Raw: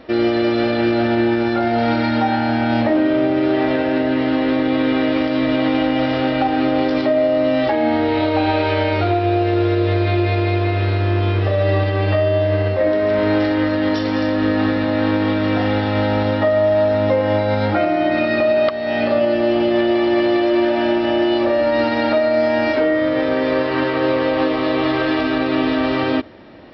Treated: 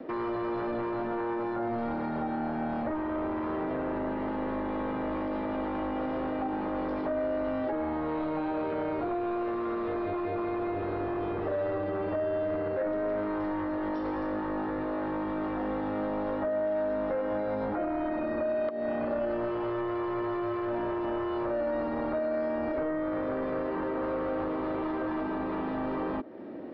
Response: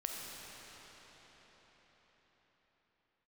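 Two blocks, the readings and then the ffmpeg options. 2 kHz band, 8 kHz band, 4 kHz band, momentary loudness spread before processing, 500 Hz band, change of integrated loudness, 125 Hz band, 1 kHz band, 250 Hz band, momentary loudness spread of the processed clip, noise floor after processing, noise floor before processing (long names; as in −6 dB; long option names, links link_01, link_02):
−18.0 dB, can't be measured, below −25 dB, 2 LU, −13.5 dB, −14.0 dB, −21.5 dB, −12.0 dB, −14.0 dB, 2 LU, −33 dBFS, −19 dBFS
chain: -filter_complex "[0:a]acrossover=split=220 2000:gain=0.0794 1 0.2[link_01][link_02][link_03];[link_01][link_02][link_03]amix=inputs=3:normalize=0,acrossover=split=640|1300[link_04][link_05][link_06];[link_04]acompressor=threshold=-32dB:ratio=4[link_07];[link_05]acompressor=threshold=-34dB:ratio=4[link_08];[link_06]acompressor=threshold=-45dB:ratio=4[link_09];[link_07][link_08][link_09]amix=inputs=3:normalize=0,acrossover=split=460|1300[link_10][link_11][link_12];[link_10]aeval=exprs='0.0631*sin(PI/2*2.82*val(0)/0.0631)':channel_layout=same[link_13];[link_13][link_11][link_12]amix=inputs=3:normalize=0,volume=-6.5dB"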